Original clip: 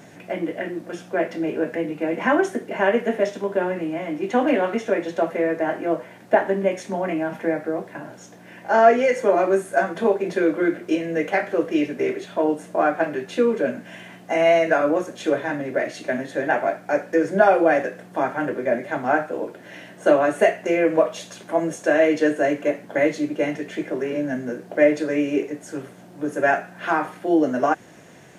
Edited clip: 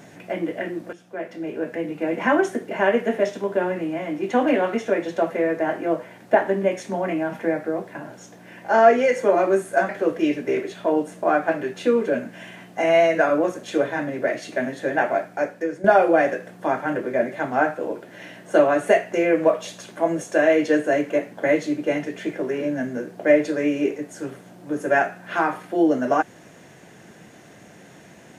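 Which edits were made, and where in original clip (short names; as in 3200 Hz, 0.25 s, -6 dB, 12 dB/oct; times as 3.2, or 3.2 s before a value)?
0.93–2.12 fade in, from -14.5 dB
9.89–11.41 cut
16.74–17.36 fade out, to -12 dB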